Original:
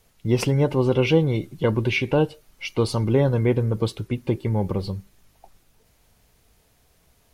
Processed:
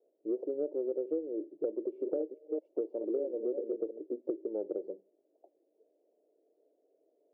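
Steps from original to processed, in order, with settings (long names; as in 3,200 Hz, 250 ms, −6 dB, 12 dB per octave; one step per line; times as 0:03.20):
0:01.77–0:03.99: delay that plays each chunk backwards 204 ms, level −6.5 dB
elliptic band-pass filter 310–620 Hz, stop band 60 dB
downward compressor 6 to 1, threshold −31 dBFS, peak gain reduction 15.5 dB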